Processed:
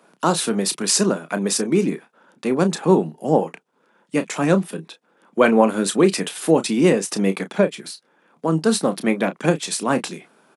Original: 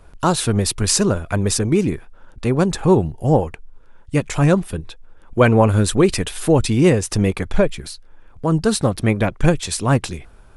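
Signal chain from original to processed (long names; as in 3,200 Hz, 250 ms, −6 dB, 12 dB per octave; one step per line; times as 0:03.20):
Butterworth high-pass 170 Hz 48 dB per octave
double-tracking delay 31 ms −11 dB
level −1 dB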